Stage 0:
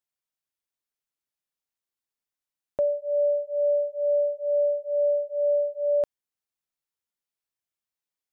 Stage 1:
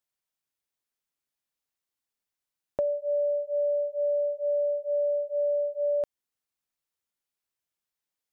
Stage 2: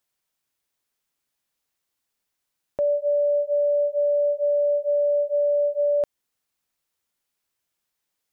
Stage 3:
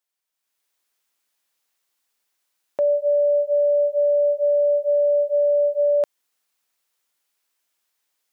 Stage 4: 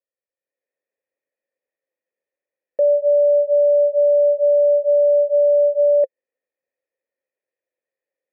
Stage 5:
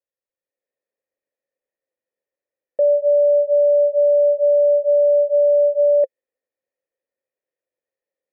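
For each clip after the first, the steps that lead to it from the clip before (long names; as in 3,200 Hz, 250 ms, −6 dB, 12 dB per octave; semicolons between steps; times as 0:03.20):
downward compressor, threshold −26 dBFS, peak gain reduction 5.5 dB; level +1.5 dB
brickwall limiter −25.5 dBFS, peak gain reduction 8 dB; level +8 dB
high-pass filter 540 Hz 6 dB per octave; automatic gain control gain up to 10 dB; level −4.5 dB
formant resonators in series e; parametric band 330 Hz +11.5 dB 2.6 octaves; level +1.5 dB
one half of a high-frequency compander decoder only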